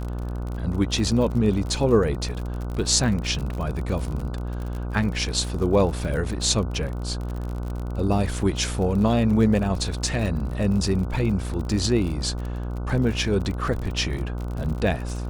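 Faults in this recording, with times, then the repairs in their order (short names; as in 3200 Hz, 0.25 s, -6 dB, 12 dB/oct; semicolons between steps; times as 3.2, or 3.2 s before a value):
buzz 60 Hz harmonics 25 -29 dBFS
crackle 48/s -30 dBFS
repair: de-click; de-hum 60 Hz, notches 25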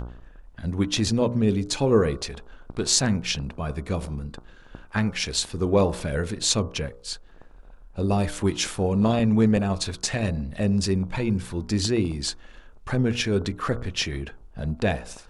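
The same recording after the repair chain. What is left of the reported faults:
none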